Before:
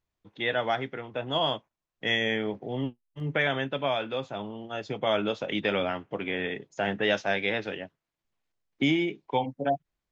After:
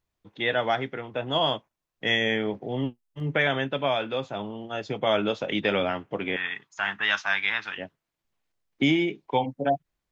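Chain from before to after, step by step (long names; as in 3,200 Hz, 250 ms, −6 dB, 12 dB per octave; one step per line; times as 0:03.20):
0:06.36–0:07.78: low shelf with overshoot 750 Hz −13.5 dB, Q 3
level +2.5 dB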